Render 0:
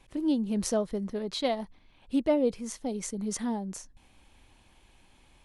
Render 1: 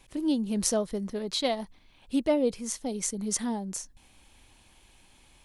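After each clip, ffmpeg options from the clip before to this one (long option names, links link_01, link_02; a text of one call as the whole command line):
ffmpeg -i in.wav -af "highshelf=frequency=3700:gain=8.5" out.wav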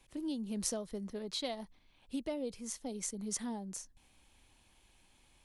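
ffmpeg -i in.wav -filter_complex "[0:a]acrossover=split=140|3000[link_01][link_02][link_03];[link_02]acompressor=threshold=-27dB:ratio=6[link_04];[link_01][link_04][link_03]amix=inputs=3:normalize=0,volume=-8dB" out.wav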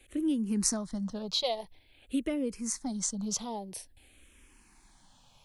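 ffmpeg -i in.wav -filter_complex "[0:a]asplit=2[link_01][link_02];[link_02]afreqshift=-0.49[link_03];[link_01][link_03]amix=inputs=2:normalize=1,volume=9dB" out.wav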